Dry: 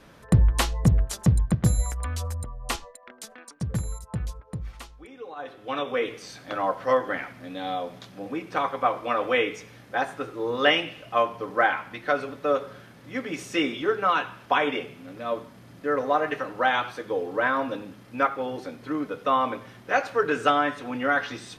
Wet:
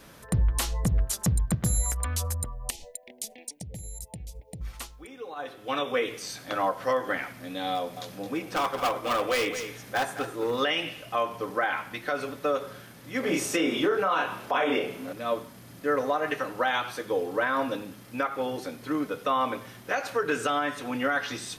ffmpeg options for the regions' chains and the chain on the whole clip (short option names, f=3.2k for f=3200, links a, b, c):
-filter_complex "[0:a]asettb=1/sr,asplit=3[a][b][c];[a]atrim=end=2.704[d];[b]atrim=start=2.7:end=4.61,asetpts=PTS-STARTPTS,afade=t=in:d=0.004:c=qsin,afade=t=out:st=1.906:d=0.004:c=qsin,acompressor=threshold=-36dB:ratio=12:attack=3.2:release=140:knee=1:detection=peak,asuperstop=centerf=1300:order=8:qfactor=1.1[e];[c]atrim=start=4.606[f];[d][e]acrossfade=d=0.004:c1=hsin:c2=qsin[g];[g][f]acrossfade=d=0.004:c1=qsin:c2=hsin,asettb=1/sr,asplit=3[h][i][j];[h]atrim=end=7.754[k];[i]atrim=start=7.75:end=10.6,asetpts=PTS-STARTPTS,afade=t=in:d=0.004:c=qsin,afade=t=out:st=2.846:d=0.004:c=qsin,acompressor=mode=upward:threshold=-40dB:ratio=2.5:attack=3.2:release=140:knee=2.83:detection=peak,asoftclip=type=hard:threshold=-22dB,aecho=1:1:217:0.282,atrim=end_sample=125685[l];[j]atrim=start=10.596[m];[k][l]acrossfade=d=0.004:c1=hsin:c2=qsin[n];[n][m]acrossfade=d=0.004:c1=qsin:c2=hsin,asettb=1/sr,asplit=3[o][p][q];[o]atrim=end=13.204[r];[p]atrim=start=13.2:end=15.13,asetpts=PTS-STARTPTS,afade=t=in:d=0.004:c=qsin,afade=t=out:st=1.926:d=0.004:c=qsin,equalizer=f=580:t=o:w=2.4:g=7.5,asplit=2[s][t];[t]adelay=31,volume=-3dB[u];[s][u]amix=inputs=2:normalize=0,atrim=end_sample=85113[v];[q]atrim=start=15.126[w];[r][v]acrossfade=d=0.004:c1=hsin:c2=qsin[x];[x][w]acrossfade=d=0.004:c1=qsin:c2=hsin,aemphasis=mode=production:type=50kf,alimiter=limit=-16dB:level=0:latency=1:release=132"